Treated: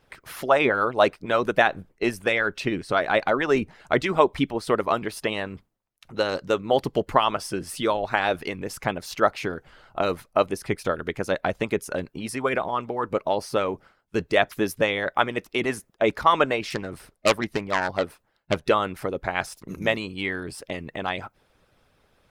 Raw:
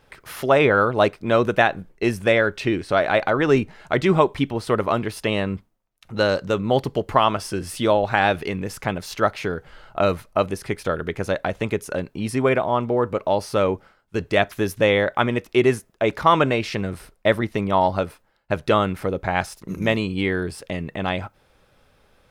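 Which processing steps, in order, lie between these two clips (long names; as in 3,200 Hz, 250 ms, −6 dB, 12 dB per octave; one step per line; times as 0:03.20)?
0:16.70–0:18.65: phase distortion by the signal itself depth 0.29 ms
harmonic and percussive parts rebalanced harmonic −13 dB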